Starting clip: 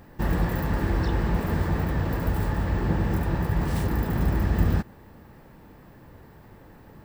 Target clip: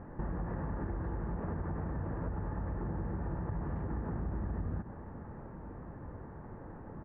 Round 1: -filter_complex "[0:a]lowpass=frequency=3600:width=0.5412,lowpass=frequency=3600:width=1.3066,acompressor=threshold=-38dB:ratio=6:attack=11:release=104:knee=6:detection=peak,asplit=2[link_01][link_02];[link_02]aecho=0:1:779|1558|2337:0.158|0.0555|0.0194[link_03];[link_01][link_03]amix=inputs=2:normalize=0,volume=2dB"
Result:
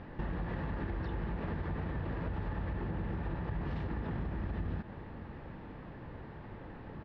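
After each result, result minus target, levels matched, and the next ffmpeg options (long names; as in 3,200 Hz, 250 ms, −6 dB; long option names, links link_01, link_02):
echo 533 ms early; 2,000 Hz band +6.0 dB
-filter_complex "[0:a]lowpass=frequency=3600:width=0.5412,lowpass=frequency=3600:width=1.3066,acompressor=threshold=-38dB:ratio=6:attack=11:release=104:knee=6:detection=peak,asplit=2[link_01][link_02];[link_02]aecho=0:1:1312|2624|3936:0.158|0.0555|0.0194[link_03];[link_01][link_03]amix=inputs=2:normalize=0,volume=2dB"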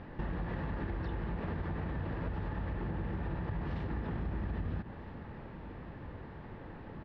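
2,000 Hz band +5.5 dB
-filter_complex "[0:a]lowpass=frequency=1500:width=0.5412,lowpass=frequency=1500:width=1.3066,acompressor=threshold=-38dB:ratio=6:attack=11:release=104:knee=6:detection=peak,asplit=2[link_01][link_02];[link_02]aecho=0:1:1312|2624|3936:0.158|0.0555|0.0194[link_03];[link_01][link_03]amix=inputs=2:normalize=0,volume=2dB"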